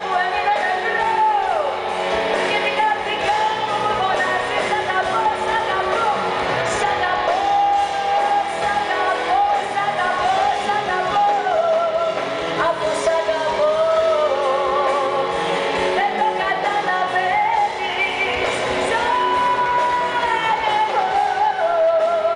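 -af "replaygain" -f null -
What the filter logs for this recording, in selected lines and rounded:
track_gain = +1.1 dB
track_peak = 0.289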